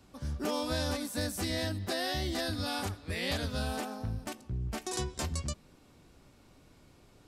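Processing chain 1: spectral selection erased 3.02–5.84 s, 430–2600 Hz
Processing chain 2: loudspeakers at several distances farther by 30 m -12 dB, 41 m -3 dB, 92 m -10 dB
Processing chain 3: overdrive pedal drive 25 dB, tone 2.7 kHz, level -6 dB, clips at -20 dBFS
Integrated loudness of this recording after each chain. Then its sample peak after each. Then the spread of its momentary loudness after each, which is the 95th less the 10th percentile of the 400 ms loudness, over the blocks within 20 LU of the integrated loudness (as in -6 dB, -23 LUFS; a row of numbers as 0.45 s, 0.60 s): -35.0 LUFS, -32.5 LUFS, -29.5 LUFS; -20.5 dBFS, -18.0 dBFS, -20.5 dBFS; 7 LU, 7 LU, 20 LU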